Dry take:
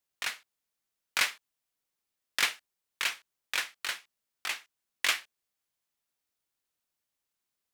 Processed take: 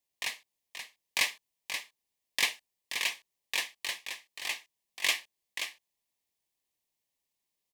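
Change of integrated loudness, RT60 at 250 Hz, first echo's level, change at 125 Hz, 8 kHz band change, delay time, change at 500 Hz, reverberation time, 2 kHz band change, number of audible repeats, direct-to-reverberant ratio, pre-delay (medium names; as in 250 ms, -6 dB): -1.0 dB, no reverb, -8.0 dB, no reading, +0.5 dB, 529 ms, +0.5 dB, no reverb, -0.5 dB, 1, no reverb, no reverb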